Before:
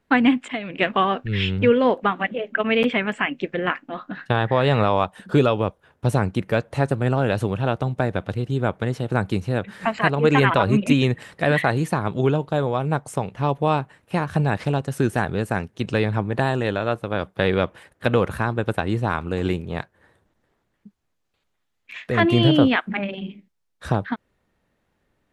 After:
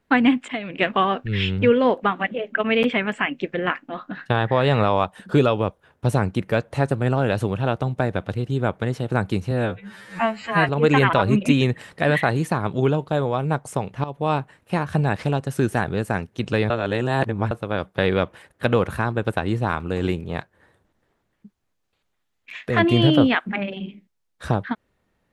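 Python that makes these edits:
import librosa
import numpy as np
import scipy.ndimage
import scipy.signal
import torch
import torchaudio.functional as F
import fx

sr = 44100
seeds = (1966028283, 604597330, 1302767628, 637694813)

y = fx.edit(x, sr, fx.stretch_span(start_s=9.51, length_s=0.59, factor=2.0),
    fx.fade_in_from(start_s=13.45, length_s=0.32, floor_db=-15.5),
    fx.reverse_span(start_s=16.11, length_s=0.81), tone=tone)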